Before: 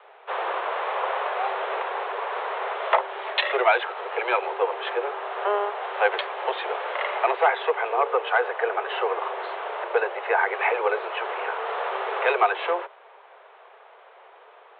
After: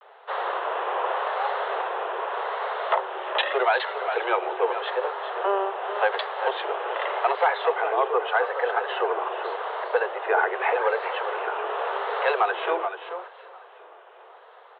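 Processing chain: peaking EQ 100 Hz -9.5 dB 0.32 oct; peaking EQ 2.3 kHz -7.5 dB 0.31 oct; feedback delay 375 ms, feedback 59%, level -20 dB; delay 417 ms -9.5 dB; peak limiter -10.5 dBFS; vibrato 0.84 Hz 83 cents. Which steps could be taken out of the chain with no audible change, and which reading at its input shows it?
peaking EQ 100 Hz: input has nothing below 340 Hz

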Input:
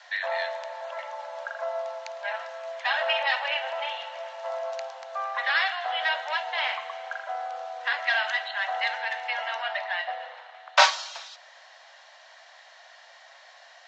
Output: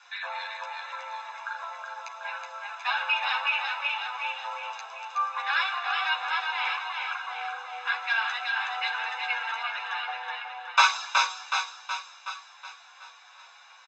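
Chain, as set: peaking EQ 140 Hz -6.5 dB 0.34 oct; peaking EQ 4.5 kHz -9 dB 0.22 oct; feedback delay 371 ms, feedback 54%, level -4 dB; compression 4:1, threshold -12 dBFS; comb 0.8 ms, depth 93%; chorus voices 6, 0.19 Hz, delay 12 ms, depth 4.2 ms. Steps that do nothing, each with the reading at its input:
peaking EQ 140 Hz: input has nothing below 480 Hz

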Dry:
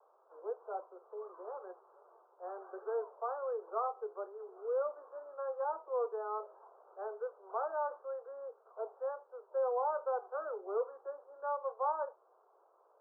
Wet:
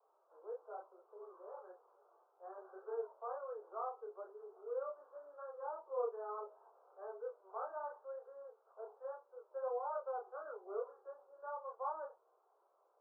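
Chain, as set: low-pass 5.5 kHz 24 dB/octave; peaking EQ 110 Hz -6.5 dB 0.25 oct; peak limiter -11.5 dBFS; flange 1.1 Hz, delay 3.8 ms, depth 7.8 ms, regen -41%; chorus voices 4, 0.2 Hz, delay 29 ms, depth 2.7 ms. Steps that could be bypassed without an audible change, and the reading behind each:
low-pass 5.5 kHz: input has nothing above 1.6 kHz; peaking EQ 110 Hz: input has nothing below 360 Hz; peak limiter -11.5 dBFS: peak at its input -23.5 dBFS

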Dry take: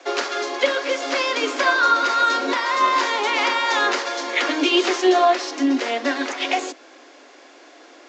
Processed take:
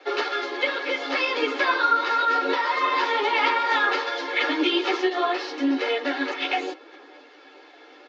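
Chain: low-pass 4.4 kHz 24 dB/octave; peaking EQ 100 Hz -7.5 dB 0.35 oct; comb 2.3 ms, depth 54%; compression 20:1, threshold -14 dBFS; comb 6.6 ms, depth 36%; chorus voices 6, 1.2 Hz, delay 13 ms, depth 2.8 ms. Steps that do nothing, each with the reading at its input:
peaking EQ 100 Hz: input has nothing below 230 Hz

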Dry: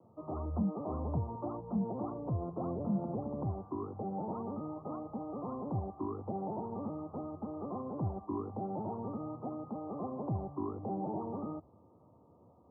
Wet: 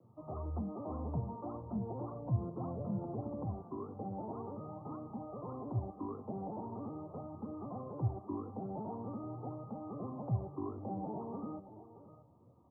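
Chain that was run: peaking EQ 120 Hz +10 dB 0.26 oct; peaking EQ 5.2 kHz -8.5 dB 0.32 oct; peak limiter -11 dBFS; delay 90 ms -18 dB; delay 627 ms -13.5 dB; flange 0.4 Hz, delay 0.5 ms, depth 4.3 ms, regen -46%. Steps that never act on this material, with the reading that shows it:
peaking EQ 5.2 kHz: input has nothing above 1.3 kHz; peak limiter -11 dBFS: peak at its input -20.0 dBFS

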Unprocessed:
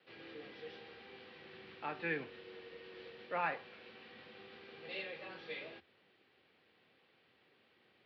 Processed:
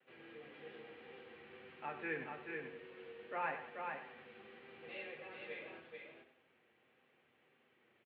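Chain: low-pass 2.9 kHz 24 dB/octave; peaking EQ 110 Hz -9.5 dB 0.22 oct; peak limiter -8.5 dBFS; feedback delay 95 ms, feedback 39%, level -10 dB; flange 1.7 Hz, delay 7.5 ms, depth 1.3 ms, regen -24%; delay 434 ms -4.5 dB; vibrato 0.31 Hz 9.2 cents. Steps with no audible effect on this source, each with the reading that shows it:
peak limiter -8.5 dBFS: peak at its input -23.5 dBFS

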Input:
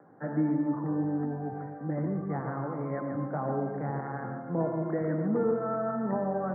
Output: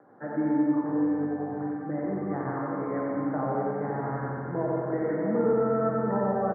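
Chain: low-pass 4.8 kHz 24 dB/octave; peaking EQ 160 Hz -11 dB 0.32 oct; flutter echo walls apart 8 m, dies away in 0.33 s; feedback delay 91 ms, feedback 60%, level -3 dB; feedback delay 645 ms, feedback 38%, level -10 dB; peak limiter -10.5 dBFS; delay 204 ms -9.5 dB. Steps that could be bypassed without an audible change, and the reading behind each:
low-pass 4.8 kHz: input has nothing above 1.7 kHz; peak limiter -10.5 dBFS: peak at its input -14.5 dBFS

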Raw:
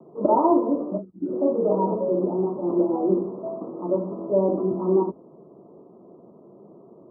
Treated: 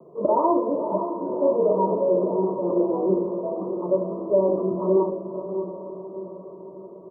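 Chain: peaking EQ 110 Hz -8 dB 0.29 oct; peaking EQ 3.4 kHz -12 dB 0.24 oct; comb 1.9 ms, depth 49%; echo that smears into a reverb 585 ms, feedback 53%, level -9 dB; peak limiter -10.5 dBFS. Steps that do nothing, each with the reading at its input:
peaking EQ 3.4 kHz: input has nothing above 1 kHz

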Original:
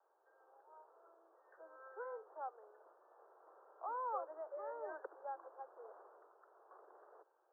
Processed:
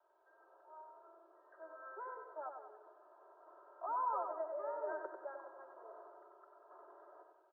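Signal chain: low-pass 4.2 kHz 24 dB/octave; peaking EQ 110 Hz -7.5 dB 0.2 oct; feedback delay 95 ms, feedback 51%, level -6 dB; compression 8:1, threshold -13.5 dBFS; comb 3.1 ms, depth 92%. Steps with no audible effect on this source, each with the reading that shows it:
low-pass 4.2 kHz: input has nothing above 1.8 kHz; peaking EQ 110 Hz: input has nothing below 290 Hz; compression, threshold -13.5 dBFS: peak at its input -27.5 dBFS

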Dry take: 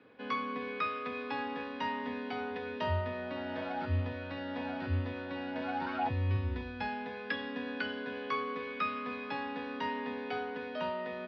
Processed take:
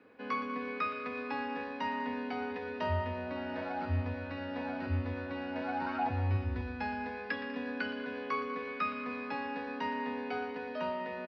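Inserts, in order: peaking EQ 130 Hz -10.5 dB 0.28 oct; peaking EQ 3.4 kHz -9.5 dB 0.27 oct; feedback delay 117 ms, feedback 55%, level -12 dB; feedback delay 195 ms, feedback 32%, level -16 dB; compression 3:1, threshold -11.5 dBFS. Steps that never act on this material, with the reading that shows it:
compression, threshold -11.5 dBFS: peak at its input -21.5 dBFS

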